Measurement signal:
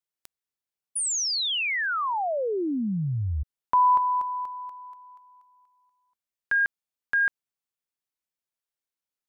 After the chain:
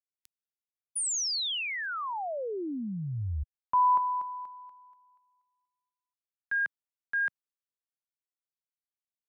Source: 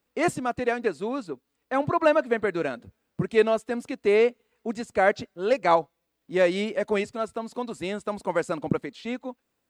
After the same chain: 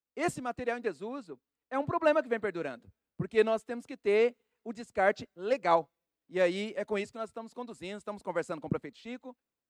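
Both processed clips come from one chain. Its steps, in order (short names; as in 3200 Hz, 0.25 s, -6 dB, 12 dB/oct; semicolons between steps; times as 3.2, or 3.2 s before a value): three-band expander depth 40%; gain -7 dB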